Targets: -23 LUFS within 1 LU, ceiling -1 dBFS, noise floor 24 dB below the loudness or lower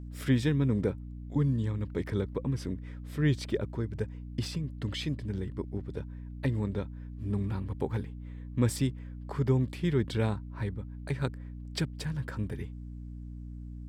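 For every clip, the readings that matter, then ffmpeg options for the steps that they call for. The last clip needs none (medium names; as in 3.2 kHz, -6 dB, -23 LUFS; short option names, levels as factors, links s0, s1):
hum 60 Hz; highest harmonic 300 Hz; hum level -39 dBFS; loudness -32.5 LUFS; peak level -15.0 dBFS; loudness target -23.0 LUFS
-> -af "bandreject=f=60:t=h:w=4,bandreject=f=120:t=h:w=4,bandreject=f=180:t=h:w=4,bandreject=f=240:t=h:w=4,bandreject=f=300:t=h:w=4"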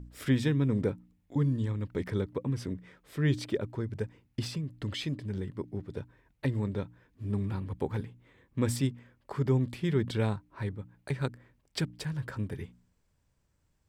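hum not found; loudness -33.0 LUFS; peak level -15.0 dBFS; loudness target -23.0 LUFS
-> -af "volume=3.16"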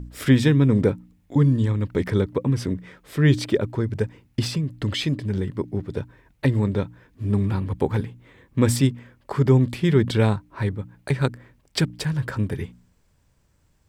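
loudness -23.0 LUFS; peak level -5.0 dBFS; noise floor -63 dBFS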